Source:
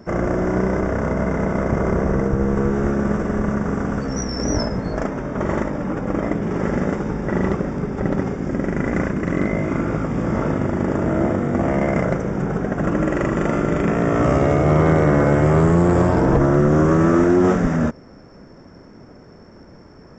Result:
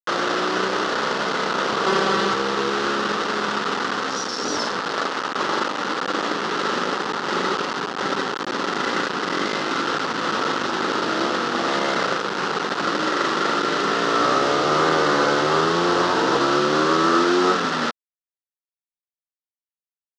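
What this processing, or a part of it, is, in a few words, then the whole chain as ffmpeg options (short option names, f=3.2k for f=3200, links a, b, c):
hand-held game console: -filter_complex "[0:a]acrusher=bits=3:mix=0:aa=0.000001,highpass=460,equalizer=f=630:t=q:w=4:g=-9,equalizer=f=1.3k:t=q:w=4:g=6,equalizer=f=2.3k:t=q:w=4:g=-8,lowpass=f=5.4k:w=0.5412,lowpass=f=5.4k:w=1.3066,asettb=1/sr,asplit=3[a][b][c];[a]atrim=end=1.864[d];[b]atrim=start=1.86:end=2.34,asetpts=PTS-STARTPTS,afade=t=in:d=0.004:c=qsin,afade=t=out:st=0.476:d=0.004:c=qsin,aecho=1:1:5.2:0.9,atrim=end_sample=21168[e];[c]atrim=start=2.336[f];[d][e]acrossfade=d=0.004:c1=hsin:c2=qsin[g];[g][f]acrossfade=d=0.004:c1=qsin:c2=hsin,volume=2.5dB"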